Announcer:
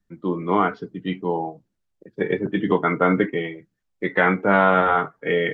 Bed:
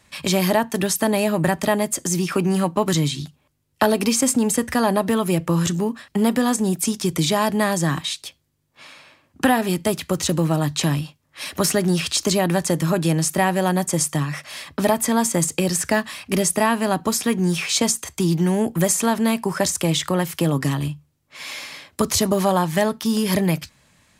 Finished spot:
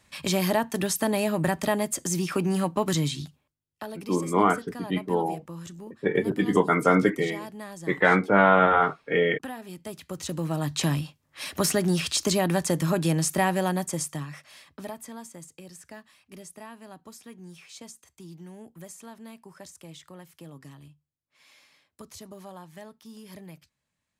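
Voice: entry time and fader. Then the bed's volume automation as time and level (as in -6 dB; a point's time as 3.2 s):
3.85 s, -1.5 dB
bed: 3.36 s -5.5 dB
3.57 s -20 dB
9.66 s -20 dB
10.83 s -4.5 dB
13.53 s -4.5 dB
15.44 s -25 dB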